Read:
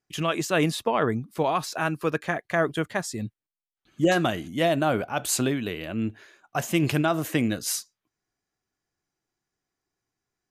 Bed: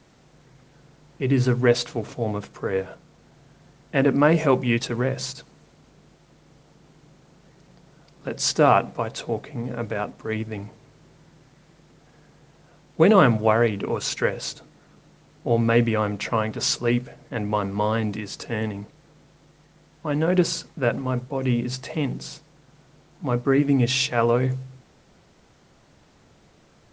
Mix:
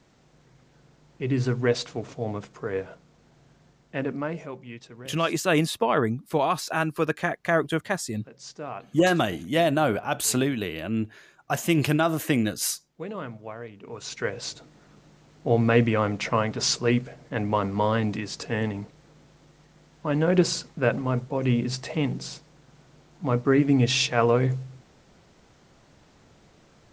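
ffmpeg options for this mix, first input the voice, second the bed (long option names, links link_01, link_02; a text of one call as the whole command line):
ffmpeg -i stem1.wav -i stem2.wav -filter_complex "[0:a]adelay=4950,volume=1dB[link_01];[1:a]volume=14dB,afade=type=out:start_time=3.52:duration=0.99:silence=0.188365,afade=type=in:start_time=13.8:duration=0.95:silence=0.11885[link_02];[link_01][link_02]amix=inputs=2:normalize=0" out.wav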